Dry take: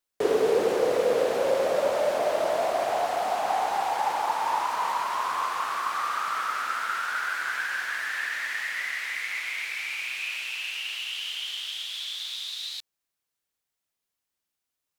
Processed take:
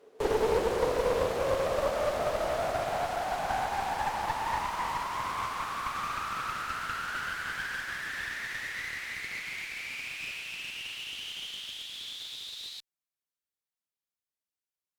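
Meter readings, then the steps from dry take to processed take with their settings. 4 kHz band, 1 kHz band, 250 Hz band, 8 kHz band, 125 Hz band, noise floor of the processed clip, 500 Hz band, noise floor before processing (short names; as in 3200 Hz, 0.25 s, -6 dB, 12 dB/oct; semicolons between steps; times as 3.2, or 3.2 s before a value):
-5.5 dB, -5.0 dB, -3.0 dB, -4.5 dB, n/a, under -85 dBFS, -5.0 dB, -85 dBFS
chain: pre-echo 0.278 s -23 dB; one-sided clip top -31.5 dBFS; upward expander 1.5:1, over -46 dBFS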